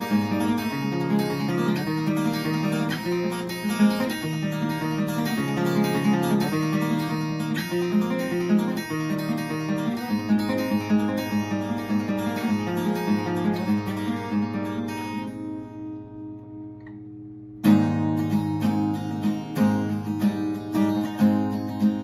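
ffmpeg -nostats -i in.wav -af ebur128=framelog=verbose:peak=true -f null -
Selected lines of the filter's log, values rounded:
Integrated loudness:
  I:         -24.8 LUFS
  Threshold: -35.2 LUFS
Loudness range:
  LRA:         3.7 LU
  Threshold: -45.3 LUFS
  LRA low:   -27.7 LUFS
  LRA high:  -24.0 LUFS
True peak:
  Peak:       -7.5 dBFS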